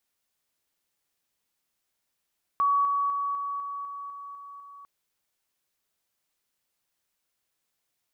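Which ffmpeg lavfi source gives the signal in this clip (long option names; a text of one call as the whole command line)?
ffmpeg -f lavfi -i "aevalsrc='pow(10,(-20-3*floor(t/0.25))/20)*sin(2*PI*1130*t)':duration=2.25:sample_rate=44100" out.wav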